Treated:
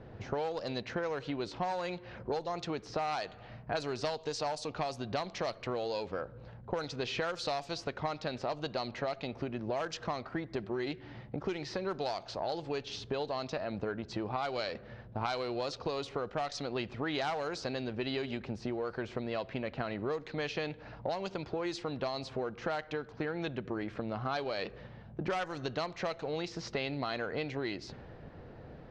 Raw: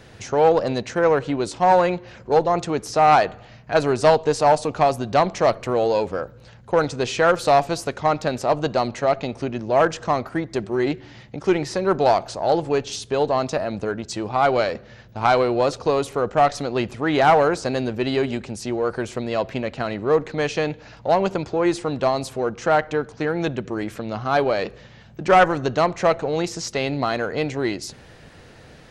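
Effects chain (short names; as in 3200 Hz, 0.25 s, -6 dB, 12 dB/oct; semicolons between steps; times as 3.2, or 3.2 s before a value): low-pass opened by the level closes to 810 Hz, open at -12 dBFS; compressor 16:1, threshold -30 dBFS, peak gain reduction 21 dB; bell 4700 Hz +12 dB 1.7 oct; gain -2.5 dB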